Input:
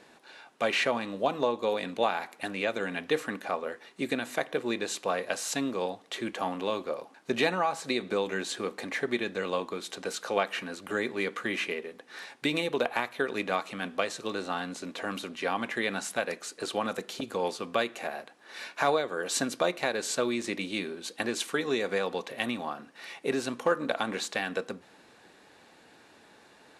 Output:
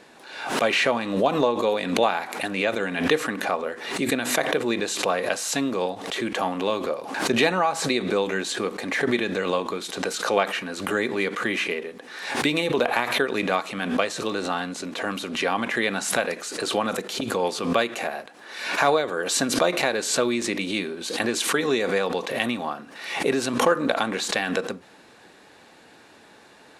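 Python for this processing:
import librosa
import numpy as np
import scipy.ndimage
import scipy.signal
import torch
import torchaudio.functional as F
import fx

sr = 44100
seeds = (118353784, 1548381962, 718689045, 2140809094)

y = fx.pre_swell(x, sr, db_per_s=66.0)
y = y * 10.0 ** (5.5 / 20.0)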